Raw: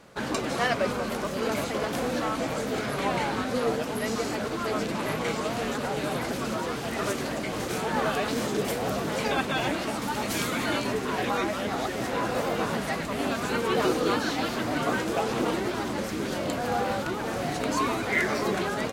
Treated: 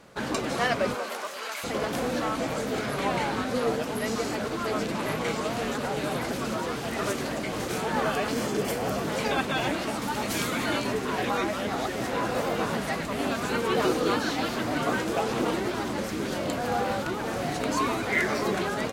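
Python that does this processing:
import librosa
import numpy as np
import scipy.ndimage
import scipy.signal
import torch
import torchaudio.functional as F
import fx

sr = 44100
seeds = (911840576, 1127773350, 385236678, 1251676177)

y = fx.highpass(x, sr, hz=fx.line((0.94, 390.0), (1.63, 1400.0)), slope=12, at=(0.94, 1.63), fade=0.02)
y = fx.notch(y, sr, hz=3800.0, q=11.0, at=(8.03, 9.02))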